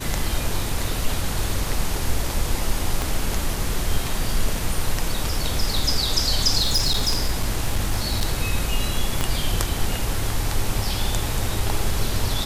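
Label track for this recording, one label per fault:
3.020000	3.020000	click
6.600000	8.330000	clipping −15 dBFS
9.210000	9.210000	click −8 dBFS

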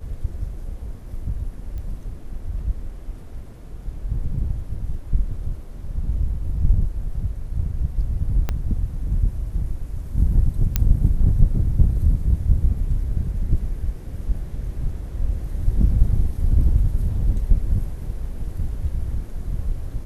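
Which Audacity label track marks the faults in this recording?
1.780000	1.780000	click −24 dBFS
8.490000	8.490000	click −11 dBFS
10.760000	10.760000	click −5 dBFS

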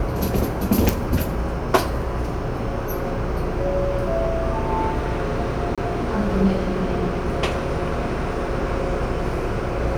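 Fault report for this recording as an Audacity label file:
0.890000	0.890000	click
5.750000	5.780000	drop-out 26 ms

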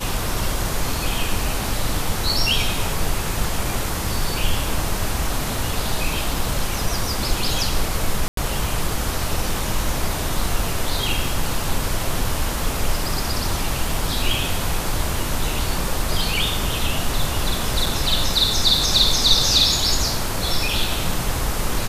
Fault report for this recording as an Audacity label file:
6.340000	6.340000	drop-out 2.4 ms
8.280000	8.370000	drop-out 93 ms
17.860000	17.860000	drop-out 3 ms

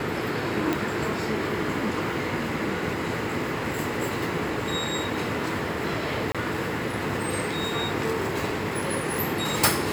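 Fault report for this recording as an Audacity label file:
0.730000	0.730000	click
6.320000	6.350000	drop-out 26 ms

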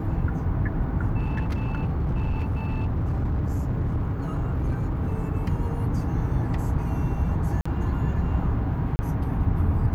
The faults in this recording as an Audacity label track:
1.190000	5.150000	clipping −21.5 dBFS
7.610000	7.660000	drop-out 45 ms
8.960000	8.990000	drop-out 30 ms

